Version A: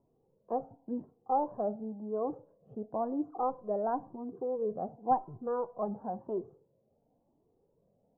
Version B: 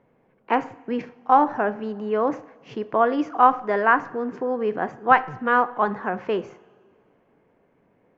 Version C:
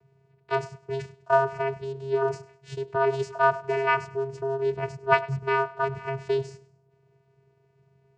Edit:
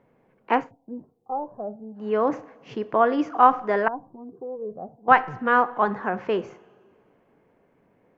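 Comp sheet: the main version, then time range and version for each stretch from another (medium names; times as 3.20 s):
B
0.64–2.02 s: from A, crossfade 0.16 s
3.88–5.08 s: from A
not used: C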